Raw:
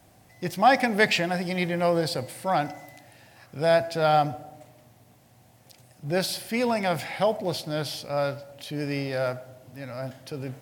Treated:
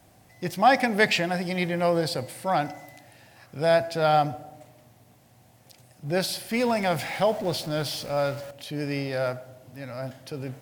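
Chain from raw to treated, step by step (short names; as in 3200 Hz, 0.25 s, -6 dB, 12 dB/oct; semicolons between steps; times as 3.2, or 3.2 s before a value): 6.51–8.51 zero-crossing step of -37.5 dBFS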